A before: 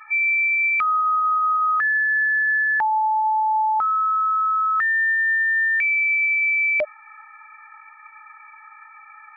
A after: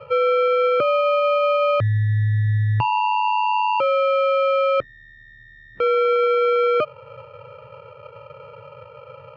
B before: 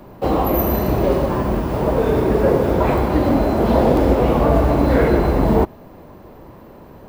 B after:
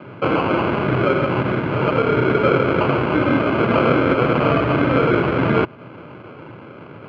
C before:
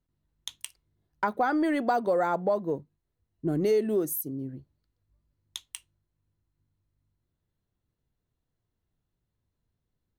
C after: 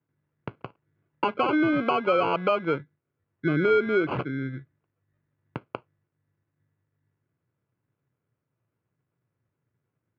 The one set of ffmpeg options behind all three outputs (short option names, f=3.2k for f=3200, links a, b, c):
-filter_complex "[0:a]asplit=2[a][b];[b]acompressor=threshold=-23dB:ratio=6,volume=2dB[c];[a][c]amix=inputs=2:normalize=0,acrusher=samples=24:mix=1:aa=0.000001,highpass=f=110:w=0.5412,highpass=f=110:w=1.3066,equalizer=f=120:t=q:w=4:g=5,equalizer=f=210:t=q:w=4:g=-5,equalizer=f=770:t=q:w=4:g=-6,equalizer=f=1.4k:t=q:w=4:g=3,lowpass=f=2.6k:w=0.5412,lowpass=f=2.6k:w=1.3066,volume=-2.5dB"